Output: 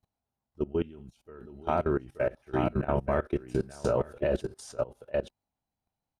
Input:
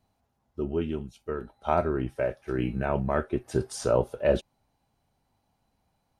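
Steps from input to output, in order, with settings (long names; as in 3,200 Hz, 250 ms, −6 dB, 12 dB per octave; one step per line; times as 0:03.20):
0:02.83–0:03.93: double-tracking delay 28 ms −7 dB
single-tap delay 879 ms −6 dB
in parallel at +2 dB: brickwall limiter −18 dBFS, peak gain reduction 9.5 dB
on the sum: output level in coarse steps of 21 dB
level −4.5 dB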